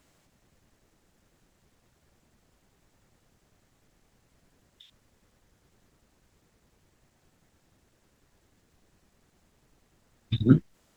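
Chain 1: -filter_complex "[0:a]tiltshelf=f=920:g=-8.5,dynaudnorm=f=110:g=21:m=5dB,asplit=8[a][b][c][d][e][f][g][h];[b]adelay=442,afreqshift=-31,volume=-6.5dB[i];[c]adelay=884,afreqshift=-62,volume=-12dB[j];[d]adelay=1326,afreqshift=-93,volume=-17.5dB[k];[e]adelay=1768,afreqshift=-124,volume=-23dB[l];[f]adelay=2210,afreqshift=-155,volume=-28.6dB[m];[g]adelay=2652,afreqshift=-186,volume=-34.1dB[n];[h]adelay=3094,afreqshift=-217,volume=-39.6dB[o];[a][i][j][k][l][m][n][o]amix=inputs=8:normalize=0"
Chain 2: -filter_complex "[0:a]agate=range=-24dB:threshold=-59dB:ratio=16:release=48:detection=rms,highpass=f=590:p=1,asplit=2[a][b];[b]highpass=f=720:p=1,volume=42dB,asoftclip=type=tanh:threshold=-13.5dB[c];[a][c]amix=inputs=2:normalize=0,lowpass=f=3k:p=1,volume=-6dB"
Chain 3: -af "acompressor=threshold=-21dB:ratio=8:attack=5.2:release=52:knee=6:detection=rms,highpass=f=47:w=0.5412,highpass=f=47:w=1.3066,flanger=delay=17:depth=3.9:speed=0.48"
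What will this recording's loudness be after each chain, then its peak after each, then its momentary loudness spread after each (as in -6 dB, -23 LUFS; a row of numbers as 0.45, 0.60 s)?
-34.5, -26.0, -34.0 LUFS; -11.5, -13.5, -17.5 dBFS; 25, 8, 5 LU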